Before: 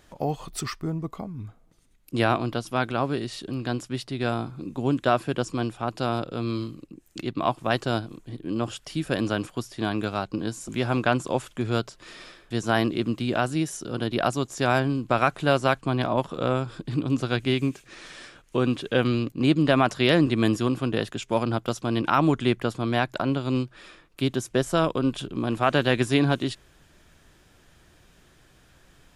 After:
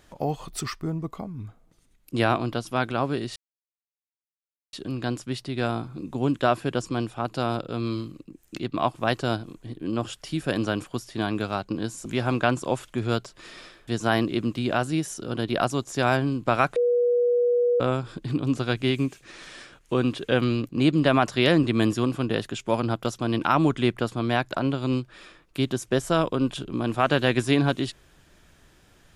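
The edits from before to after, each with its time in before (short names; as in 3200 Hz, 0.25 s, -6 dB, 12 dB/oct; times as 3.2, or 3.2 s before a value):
3.36 insert silence 1.37 s
15.39–16.43 bleep 484 Hz -18 dBFS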